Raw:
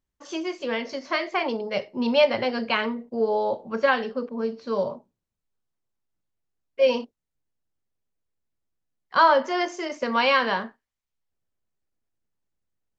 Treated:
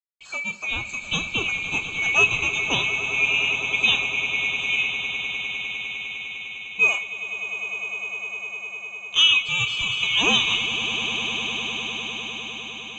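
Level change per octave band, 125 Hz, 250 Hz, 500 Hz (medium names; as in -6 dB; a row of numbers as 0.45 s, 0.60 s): no reading, -7.0 dB, -13.0 dB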